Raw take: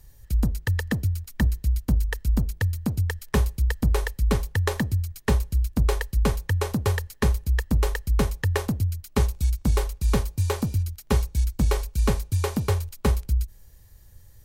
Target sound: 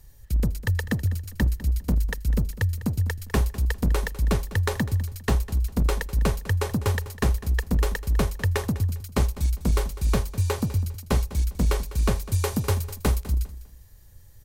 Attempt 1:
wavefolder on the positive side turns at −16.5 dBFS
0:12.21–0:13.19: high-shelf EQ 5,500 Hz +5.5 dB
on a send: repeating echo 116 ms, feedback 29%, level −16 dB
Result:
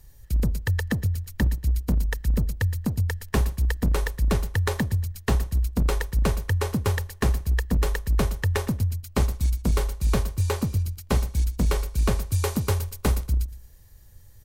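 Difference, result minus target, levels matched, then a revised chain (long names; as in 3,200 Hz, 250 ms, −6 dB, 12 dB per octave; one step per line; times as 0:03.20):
echo 85 ms early
wavefolder on the positive side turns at −16.5 dBFS
0:12.21–0:13.19: high-shelf EQ 5,500 Hz +5.5 dB
on a send: repeating echo 201 ms, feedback 29%, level −16 dB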